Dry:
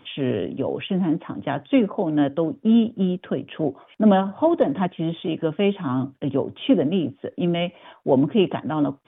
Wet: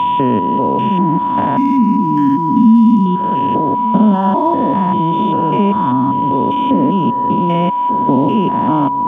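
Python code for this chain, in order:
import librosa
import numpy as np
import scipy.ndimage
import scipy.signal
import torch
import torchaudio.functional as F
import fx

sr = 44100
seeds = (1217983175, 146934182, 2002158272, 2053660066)

p1 = fx.spec_steps(x, sr, hold_ms=200)
p2 = fx.recorder_agc(p1, sr, target_db=-20.0, rise_db_per_s=11.0, max_gain_db=30)
p3 = fx.small_body(p2, sr, hz=(220.0, 960.0), ring_ms=45, db=9)
p4 = p3 + fx.echo_single(p3, sr, ms=1193, db=-16.5, dry=0)
p5 = fx.spec_box(p4, sr, start_s=1.72, length_s=1.48, low_hz=470.0, high_hz=970.0, gain_db=-27)
p6 = fx.backlash(p5, sr, play_db=-34.5)
p7 = p5 + (p6 * 10.0 ** (-7.0 / 20.0))
p8 = fx.curve_eq(p7, sr, hz=(140.0, 260.0, 570.0, 2100.0, 3400.0, 4800.0), db=(0, 6, -23, 1, -10, 9), at=(1.57, 3.06))
p9 = p8 + 10.0 ** (-23.0 / 20.0) * np.sin(2.0 * np.pi * 980.0 * np.arange(len(p8)) / sr)
p10 = fx.peak_eq(p9, sr, hz=1000.0, db=5.0, octaves=0.73)
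p11 = fx.band_squash(p10, sr, depth_pct=70)
y = p11 * 10.0 ** (2.0 / 20.0)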